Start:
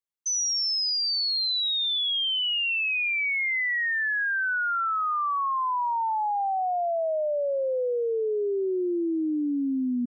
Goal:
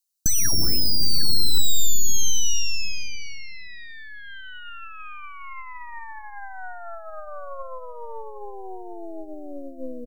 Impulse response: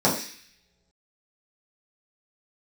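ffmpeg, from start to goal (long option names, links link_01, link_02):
-filter_complex "[0:a]lowshelf=frequency=350:gain=-11,alimiter=level_in=10dB:limit=-24dB:level=0:latency=1,volume=-10dB,aexciter=amount=7.9:drive=8.4:freq=3200,asplit=2[link_01][link_02];[1:a]atrim=start_sample=2205,asetrate=43659,aresample=44100[link_03];[link_02][link_03]afir=irnorm=-1:irlink=0,volume=-33.5dB[link_04];[link_01][link_04]amix=inputs=2:normalize=0,aeval=exprs='0.376*(cos(1*acos(clip(val(0)/0.376,-1,1)))-cos(1*PI/2))+0.0376*(cos(3*acos(clip(val(0)/0.376,-1,1)))-cos(3*PI/2))+0.0106*(cos(7*acos(clip(val(0)/0.376,-1,1)))-cos(7*PI/2))+0.168*(cos(8*acos(clip(val(0)/0.376,-1,1)))-cos(8*PI/2))':channel_layout=same,acontrast=25,asplit=2[link_05][link_06];[link_06]adelay=758,volume=-10dB,highshelf=frequency=4000:gain=-17.1[link_07];[link_05][link_07]amix=inputs=2:normalize=0,acrossover=split=370[link_08][link_09];[link_09]acompressor=threshold=-16dB:ratio=3[link_10];[link_08][link_10]amix=inputs=2:normalize=0,highshelf=frequency=3800:gain=-6,bandreject=frequency=3400:width=6.3,volume=-3dB"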